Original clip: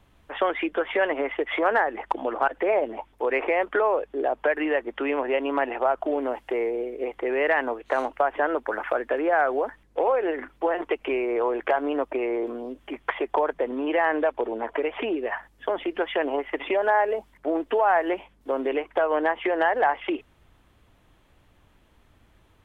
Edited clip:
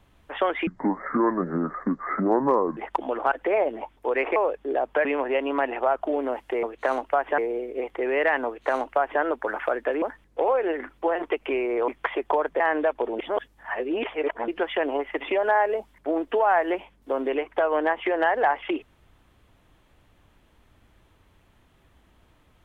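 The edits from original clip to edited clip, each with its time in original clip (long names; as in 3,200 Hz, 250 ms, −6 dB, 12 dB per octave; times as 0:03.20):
0:00.67–0:01.93: play speed 60%
0:03.52–0:03.85: remove
0:04.54–0:05.04: remove
0:07.70–0:08.45: duplicate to 0:06.62
0:09.26–0:09.61: remove
0:11.47–0:12.92: remove
0:13.64–0:13.99: remove
0:14.58–0:15.87: reverse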